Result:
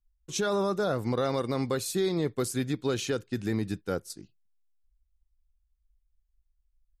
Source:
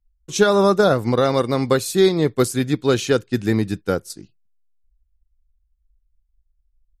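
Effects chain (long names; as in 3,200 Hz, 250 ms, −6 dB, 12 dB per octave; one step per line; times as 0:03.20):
brickwall limiter −12.5 dBFS, peak gain reduction 9.5 dB
level −7 dB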